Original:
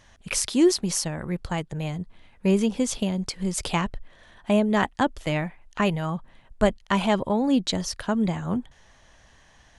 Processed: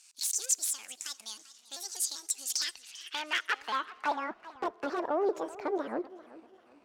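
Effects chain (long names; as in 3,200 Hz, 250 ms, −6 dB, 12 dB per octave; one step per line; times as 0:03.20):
pitch shifter gated in a rhythm +3.5 semitones, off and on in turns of 280 ms
low-shelf EQ 490 Hz −11.5 dB
in parallel at +0.5 dB: downward compressor 12 to 1, threshold −36 dBFS, peak gain reduction 16 dB
on the sum: wrap-around overflow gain 16 dB
change of speed 1.43×
leveller curve on the samples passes 2
soft clipping −15.5 dBFS, distortion −21 dB
band-pass filter sweep 7,000 Hz → 550 Hz, 0:02.35–0:04.52
on a send at −22.5 dB: convolution reverb RT60 2.7 s, pre-delay 4 ms
on the sum: feedback echo with a swinging delay time 389 ms, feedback 33%, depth 194 cents, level −18 dB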